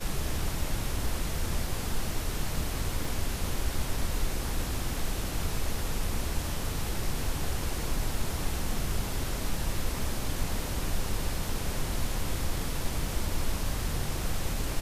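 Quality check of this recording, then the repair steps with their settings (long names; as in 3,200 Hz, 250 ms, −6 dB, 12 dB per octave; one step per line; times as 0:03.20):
0:03.05: drop-out 3.2 ms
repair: repair the gap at 0:03.05, 3.2 ms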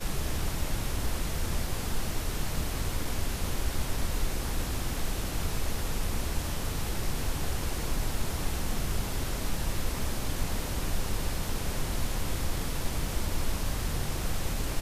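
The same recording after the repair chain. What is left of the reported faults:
none of them is left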